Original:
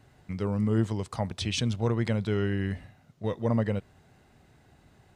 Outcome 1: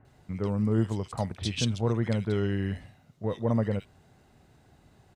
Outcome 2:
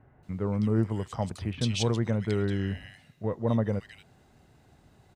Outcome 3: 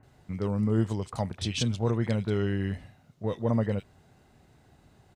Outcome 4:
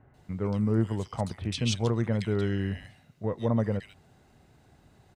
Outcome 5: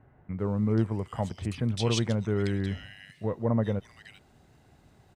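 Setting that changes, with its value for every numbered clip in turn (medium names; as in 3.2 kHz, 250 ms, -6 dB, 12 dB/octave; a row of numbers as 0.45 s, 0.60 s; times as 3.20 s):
bands offset in time, time: 50 ms, 230 ms, 30 ms, 140 ms, 390 ms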